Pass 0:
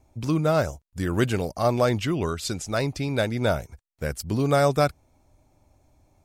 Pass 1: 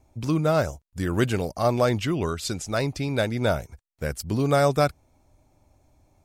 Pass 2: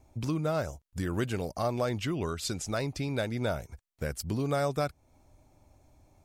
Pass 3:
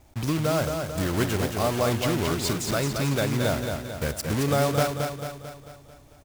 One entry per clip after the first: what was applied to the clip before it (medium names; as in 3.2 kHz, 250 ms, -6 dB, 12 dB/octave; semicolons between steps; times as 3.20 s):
no audible change
compression 2:1, threshold -33 dBFS, peak gain reduction 9.5 dB
block-companded coder 3-bit; feedback comb 140 Hz, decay 2 s, mix 40%; on a send: feedback delay 222 ms, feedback 52%, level -5.5 dB; on the sum: trim +9 dB